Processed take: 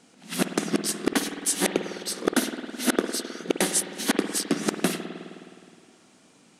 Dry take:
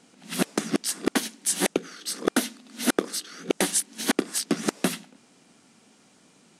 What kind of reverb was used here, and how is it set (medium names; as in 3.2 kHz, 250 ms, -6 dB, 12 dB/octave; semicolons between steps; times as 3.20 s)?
spring tank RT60 2.3 s, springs 52 ms, chirp 50 ms, DRR 6.5 dB